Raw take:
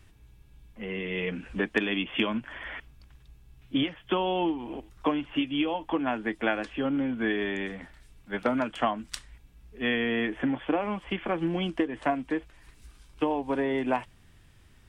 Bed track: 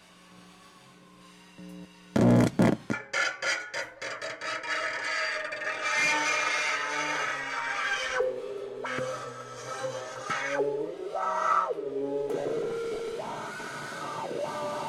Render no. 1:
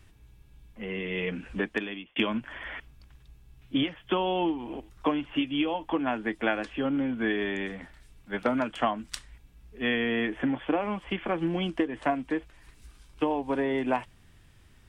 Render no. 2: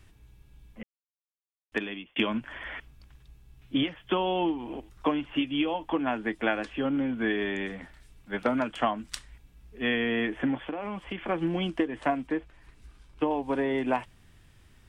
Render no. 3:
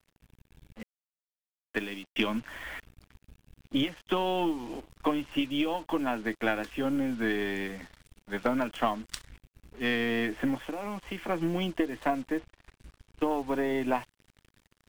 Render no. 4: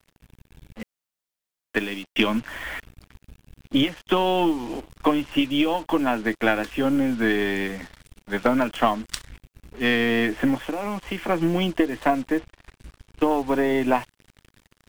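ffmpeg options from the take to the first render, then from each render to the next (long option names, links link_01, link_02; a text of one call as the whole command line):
ffmpeg -i in.wav -filter_complex "[0:a]asplit=2[link_01][link_02];[link_01]atrim=end=2.16,asetpts=PTS-STARTPTS,afade=type=out:start_time=1.54:duration=0.62[link_03];[link_02]atrim=start=2.16,asetpts=PTS-STARTPTS,afade=type=in:duration=0.004:curve=hsin[link_04];[link_03][link_04]concat=n=2:v=0:a=1" out.wav
ffmpeg -i in.wav -filter_complex "[0:a]asettb=1/sr,asplit=3[link_01][link_02][link_03];[link_01]atrim=end=10.664[link_04];[link_02]atrim=start=10.66:end=11.28,asetpts=PTS-STARTPTS,afade=type=in:duration=0.004:curve=qsin,afade=type=out:start_time=0.616:duration=0.004:curve=qsin,acompressor=threshold=-30dB:ratio=5:attack=3.2:release=140:knee=1:detection=peak[link_05];[link_03]atrim=start=11.276[link_06];[link_04][link_05]acrossfade=duration=0.004:curve1=hsin:curve2=qsin[link_07];[link_07][link_06]acrossfade=duration=0.004:curve1=qsin:curve2=hsin,asettb=1/sr,asplit=3[link_08][link_09][link_10];[link_08]atrim=end=12.274[link_11];[link_09]atrim=start=12.27:end=13.31,asetpts=PTS-STARTPTS,afade=type=in:duration=0.004:curve=qsin,afade=type=out:start_time=1.036:duration=0.004:curve=qsin,highshelf=frequency=4000:gain=-9.5[link_12];[link_10]atrim=start=13.306[link_13];[link_11][link_12]acrossfade=duration=0.004:curve1=hsin:curve2=qsin[link_14];[link_14][link_13]acrossfade=duration=0.004:curve1=qsin:curve2=hsin,asplit=3[link_15][link_16][link_17];[link_15]atrim=end=0.83,asetpts=PTS-STARTPTS,afade=type=out:start_time=0.826:duration=0.004:curve=hsin[link_18];[link_16]atrim=start=0.83:end=1.72,asetpts=PTS-STARTPTS,volume=0[link_19];[link_17]atrim=start=1.72,asetpts=PTS-STARTPTS,afade=type=in:duration=0.004:curve=hsin[link_20];[link_18][link_19][link_20]concat=n=3:v=0:a=1" out.wav
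ffmpeg -i in.wav -af "aeval=exprs='if(lt(val(0),0),0.708*val(0),val(0))':channel_layout=same,acrusher=bits=7:mix=0:aa=0.5" out.wav
ffmpeg -i in.wav -af "volume=7.5dB" out.wav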